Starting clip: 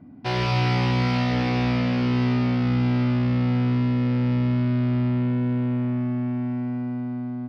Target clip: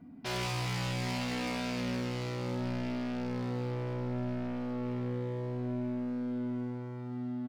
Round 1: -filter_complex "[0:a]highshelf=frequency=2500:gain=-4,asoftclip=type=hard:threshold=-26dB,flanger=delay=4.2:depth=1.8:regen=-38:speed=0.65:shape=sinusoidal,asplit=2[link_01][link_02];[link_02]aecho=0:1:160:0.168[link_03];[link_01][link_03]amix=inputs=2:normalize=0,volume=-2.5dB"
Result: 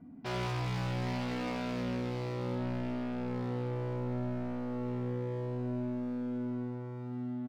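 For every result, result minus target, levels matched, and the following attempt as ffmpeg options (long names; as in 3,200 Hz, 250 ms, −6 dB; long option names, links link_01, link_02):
echo-to-direct +10.5 dB; 4,000 Hz band −5.5 dB
-filter_complex "[0:a]highshelf=frequency=2500:gain=-4,asoftclip=type=hard:threshold=-26dB,flanger=delay=4.2:depth=1.8:regen=-38:speed=0.65:shape=sinusoidal,asplit=2[link_01][link_02];[link_02]aecho=0:1:160:0.0501[link_03];[link_01][link_03]amix=inputs=2:normalize=0,volume=-2.5dB"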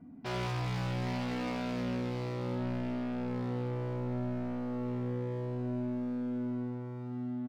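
4,000 Hz band −6.0 dB
-filter_complex "[0:a]highshelf=frequency=2500:gain=8,asoftclip=type=hard:threshold=-26dB,flanger=delay=4.2:depth=1.8:regen=-38:speed=0.65:shape=sinusoidal,asplit=2[link_01][link_02];[link_02]aecho=0:1:160:0.0501[link_03];[link_01][link_03]amix=inputs=2:normalize=0,volume=-2.5dB"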